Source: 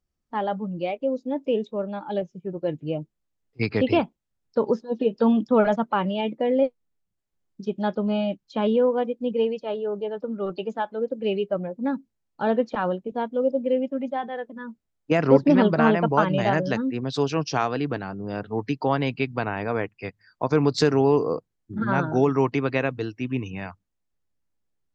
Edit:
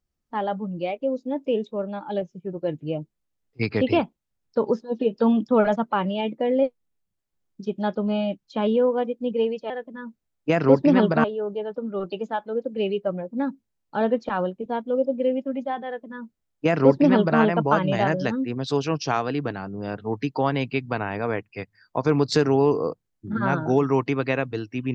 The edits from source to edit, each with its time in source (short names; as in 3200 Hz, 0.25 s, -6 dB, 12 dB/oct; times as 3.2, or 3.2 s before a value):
14.32–15.86 copy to 9.7